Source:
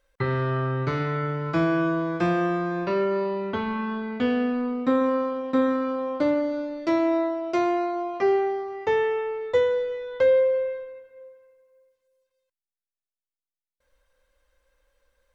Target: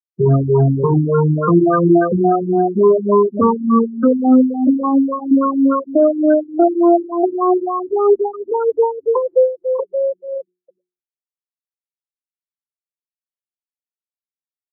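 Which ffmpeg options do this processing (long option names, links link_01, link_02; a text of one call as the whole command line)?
ffmpeg -i in.wav -filter_complex "[0:a]afftfilt=real='re*pow(10,18/40*sin(2*PI*(0.82*log(max(b,1)*sr/1024/100)/log(2)-(-2.9)*(pts-256)/sr)))':imag='im*pow(10,18/40*sin(2*PI*(0.82*log(max(b,1)*sr/1024/100)/log(2)-(-2.9)*(pts-256)/sr)))':win_size=1024:overlap=0.75,alimiter=limit=-15dB:level=0:latency=1:release=90,afftfilt=real='re*gte(hypot(re,im),0.112)':imag='im*gte(hypot(re,im),0.112)':win_size=1024:overlap=0.75,bandreject=frequency=530:width=12,acontrast=68,highshelf=frequency=3100:gain=7,asetrate=45938,aresample=44100,highpass=120,bandreject=frequency=60:width_type=h:width=6,bandreject=frequency=120:width_type=h:width=6,bandreject=frequency=180:width_type=h:width=6,bandreject=frequency=240:width_type=h:width=6,bandreject=frequency=300:width_type=h:width=6,bandreject=frequency=360:width_type=h:width=6,bandreject=frequency=420:width_type=h:width=6,acrossover=split=480[link_01][link_02];[link_02]acompressor=threshold=-18dB:ratio=6[link_03];[link_01][link_03]amix=inputs=2:normalize=0,afftfilt=real='re*lt(b*sr/1024,340*pow(1600/340,0.5+0.5*sin(2*PI*3.5*pts/sr)))':imag='im*lt(b*sr/1024,340*pow(1600/340,0.5+0.5*sin(2*PI*3.5*pts/sr)))':win_size=1024:overlap=0.75,volume=6dB" out.wav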